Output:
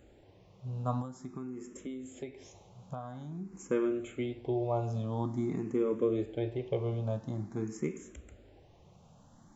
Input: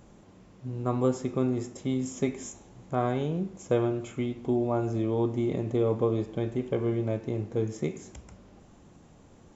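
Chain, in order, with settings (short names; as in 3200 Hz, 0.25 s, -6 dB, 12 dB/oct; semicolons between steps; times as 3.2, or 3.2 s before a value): 1.01–3.53 compressor 6:1, threshold -34 dBFS, peak gain reduction 14 dB; endless phaser +0.48 Hz; gain -1.5 dB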